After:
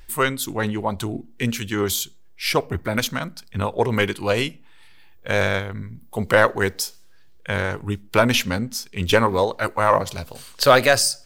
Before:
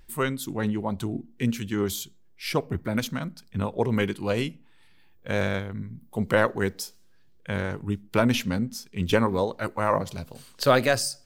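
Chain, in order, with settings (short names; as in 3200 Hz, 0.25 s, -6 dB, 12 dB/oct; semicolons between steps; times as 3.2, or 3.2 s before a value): bell 190 Hz -9 dB 2.1 oct; in parallel at -3.5 dB: soft clip -15.5 dBFS, distortion -15 dB; on the sum: gain +4.5 dB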